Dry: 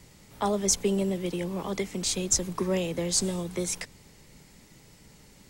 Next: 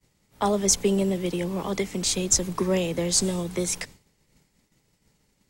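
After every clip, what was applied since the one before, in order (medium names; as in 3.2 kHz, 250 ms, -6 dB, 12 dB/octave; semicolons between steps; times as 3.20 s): expander -42 dBFS; trim +3.5 dB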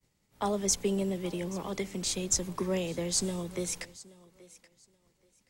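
thinning echo 828 ms, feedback 22%, high-pass 200 Hz, level -20 dB; trim -7 dB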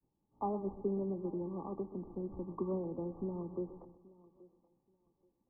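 rippled Chebyshev low-pass 1.2 kHz, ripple 9 dB; modulated delay 127 ms, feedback 44%, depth 51 cents, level -15 dB; trim -1 dB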